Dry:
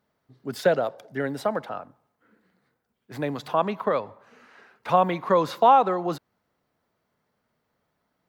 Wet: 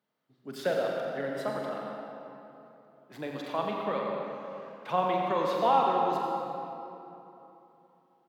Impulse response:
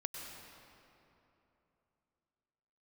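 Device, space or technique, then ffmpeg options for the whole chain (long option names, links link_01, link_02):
PA in a hall: -filter_complex "[0:a]highpass=frequency=140:width=0.5412,highpass=frequency=140:width=1.3066,equalizer=frequency=3100:width_type=o:width=0.62:gain=5,aecho=1:1:85:0.355[link_01];[1:a]atrim=start_sample=2205[link_02];[link_01][link_02]afir=irnorm=-1:irlink=0,asplit=2[link_03][link_04];[link_04]adelay=44,volume=-8dB[link_05];[link_03][link_05]amix=inputs=2:normalize=0,volume=-6.5dB"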